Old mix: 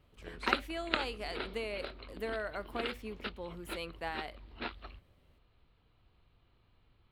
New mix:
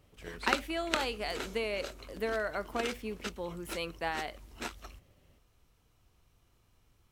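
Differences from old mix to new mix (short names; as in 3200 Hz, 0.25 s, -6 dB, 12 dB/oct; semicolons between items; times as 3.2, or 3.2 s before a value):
speech +4.5 dB; background: remove steep low-pass 4500 Hz 72 dB/oct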